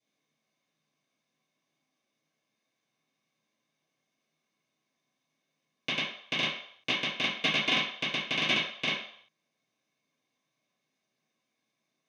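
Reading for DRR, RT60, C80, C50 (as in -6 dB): -12.5 dB, 0.65 s, 7.5 dB, 3.5 dB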